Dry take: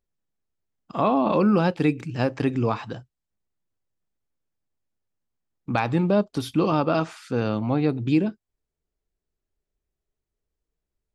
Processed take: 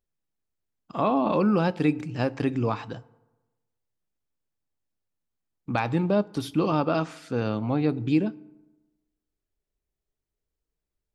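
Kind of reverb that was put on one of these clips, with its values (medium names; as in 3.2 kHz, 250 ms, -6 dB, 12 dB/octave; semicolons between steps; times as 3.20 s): FDN reverb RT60 1.1 s, low-frequency decay 1×, high-frequency decay 0.55×, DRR 19.5 dB; trim -2.5 dB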